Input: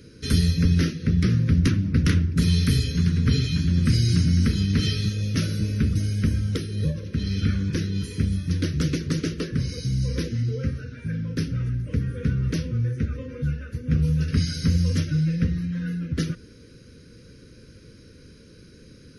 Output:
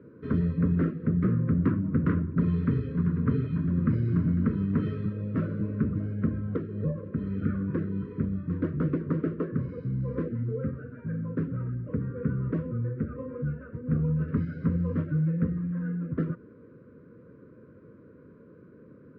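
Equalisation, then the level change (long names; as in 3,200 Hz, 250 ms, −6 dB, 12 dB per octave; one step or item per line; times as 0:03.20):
high-pass filter 150 Hz 12 dB per octave
Butterworth band-reject 870 Hz, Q 7.7
transistor ladder low-pass 1,200 Hz, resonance 50%
+8.5 dB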